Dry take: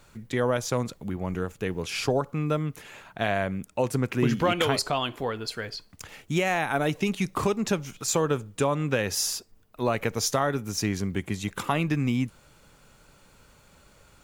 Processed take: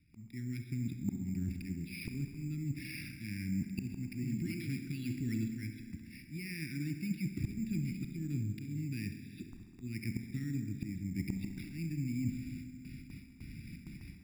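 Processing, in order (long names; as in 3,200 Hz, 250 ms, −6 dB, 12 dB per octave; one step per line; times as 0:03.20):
Chebyshev band-stop filter 320–2,200 Hz, order 4
noise gate with hold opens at −47 dBFS
high-pass filter 110 Hz 6 dB per octave
brickwall limiter −22.5 dBFS, peak gain reduction 8 dB
volume swells 748 ms
reversed playback
downward compressor 12 to 1, threshold −49 dBFS, peak gain reduction 21.5 dB
reversed playback
phaser with its sweep stopped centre 1,300 Hz, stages 4
on a send: bucket-brigade delay 67 ms, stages 1,024, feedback 84%, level −13 dB
on the sum: four-comb reverb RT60 1.6 s, combs from 28 ms, DRR 8.5 dB
bad sample-rate conversion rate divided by 6×, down filtered, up hold
level +17.5 dB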